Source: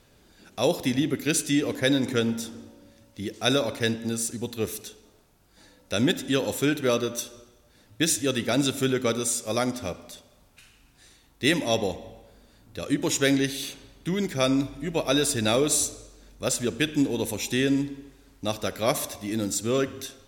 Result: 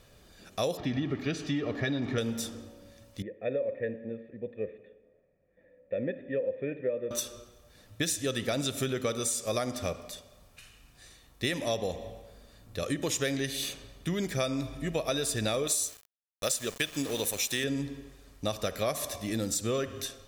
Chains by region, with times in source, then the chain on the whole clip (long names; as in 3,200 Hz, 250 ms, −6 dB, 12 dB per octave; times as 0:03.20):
0:00.77–0:02.18: converter with a step at zero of −35 dBFS + high-frequency loss of the air 230 metres + notch comb filter 510 Hz
0:03.22–0:07.11: formant resonators in series e + parametric band 200 Hz +10.5 dB 2.1 octaves
0:15.67–0:17.64: spectral tilt +2 dB per octave + centre clipping without the shift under −35.5 dBFS
whole clip: comb filter 1.7 ms, depth 35%; downward compressor, threshold −27 dBFS